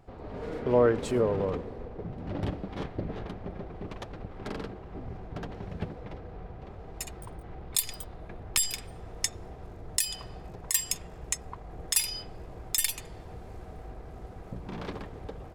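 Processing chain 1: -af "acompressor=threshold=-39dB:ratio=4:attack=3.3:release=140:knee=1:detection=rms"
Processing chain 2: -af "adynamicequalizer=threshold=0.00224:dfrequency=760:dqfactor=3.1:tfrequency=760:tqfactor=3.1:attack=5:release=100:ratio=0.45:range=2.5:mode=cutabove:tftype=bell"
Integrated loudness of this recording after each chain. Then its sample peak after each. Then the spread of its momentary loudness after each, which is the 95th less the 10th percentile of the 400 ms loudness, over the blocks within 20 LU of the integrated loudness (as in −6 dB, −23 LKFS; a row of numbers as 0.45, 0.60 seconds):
−44.5, −32.0 LKFS; −22.0, −11.0 dBFS; 6, 18 LU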